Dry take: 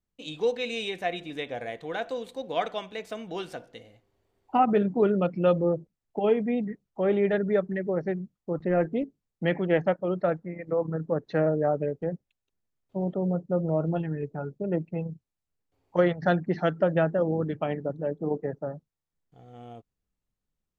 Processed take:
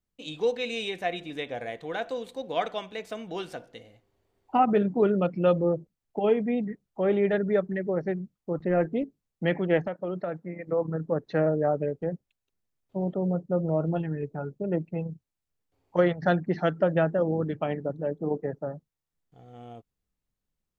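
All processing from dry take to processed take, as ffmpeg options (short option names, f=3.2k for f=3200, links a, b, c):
-filter_complex "[0:a]asettb=1/sr,asplit=3[a][b][c];[a]atrim=end=9.854[d];[b]atrim=start=9.85:end=10.67,asetpts=PTS-STARTPTS,afade=t=in:d=0.004:c=qsin,afade=t=out:st=0.816:d=0.004:c=qsin,highpass=120,acompressor=threshold=-26dB:ratio=10:attack=3.2:release=140:knee=1:detection=peak[e];[c]atrim=start=10.666[f];[d][e]acrossfade=d=0.004:c1=hsin:c2=qsin[g];[g][f]acrossfade=d=0.004:c1=qsin:c2=hsin"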